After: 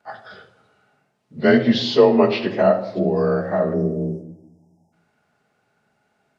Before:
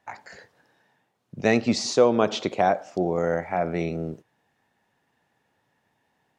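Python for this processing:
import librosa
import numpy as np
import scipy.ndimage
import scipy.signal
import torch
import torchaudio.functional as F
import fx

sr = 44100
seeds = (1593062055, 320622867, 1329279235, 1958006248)

y = fx.partial_stretch(x, sr, pct=90)
y = fx.spec_erase(y, sr, start_s=3.73, length_s=1.2, low_hz=1000.0, high_hz=4900.0)
y = fx.room_shoebox(y, sr, seeds[0], volume_m3=2600.0, walls='furnished', distance_m=1.4)
y = y * 10.0 ** (5.5 / 20.0)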